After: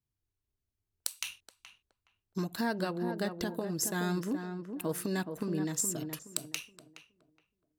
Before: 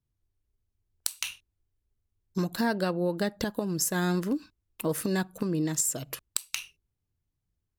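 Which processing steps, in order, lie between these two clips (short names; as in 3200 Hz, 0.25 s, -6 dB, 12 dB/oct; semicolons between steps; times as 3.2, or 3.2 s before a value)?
low shelf 63 Hz -8.5 dB; notch 530 Hz, Q 12; on a send: tape echo 0.421 s, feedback 32%, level -5.5 dB, low-pass 1100 Hz; on the sum: gain -4.5 dB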